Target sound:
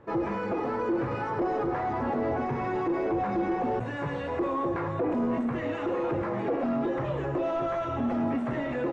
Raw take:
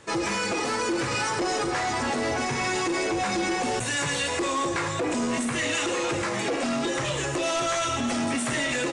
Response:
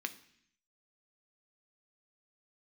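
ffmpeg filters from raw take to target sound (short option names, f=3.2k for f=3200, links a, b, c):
-af "lowpass=1k"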